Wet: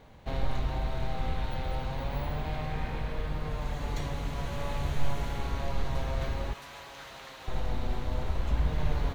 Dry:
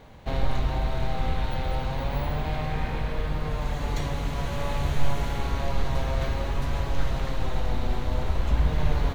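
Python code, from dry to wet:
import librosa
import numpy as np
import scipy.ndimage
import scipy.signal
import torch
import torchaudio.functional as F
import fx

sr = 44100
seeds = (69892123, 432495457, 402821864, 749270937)

y = fx.highpass(x, sr, hz=1400.0, slope=6, at=(6.53, 7.48))
y = y * 10.0 ** (-5.0 / 20.0)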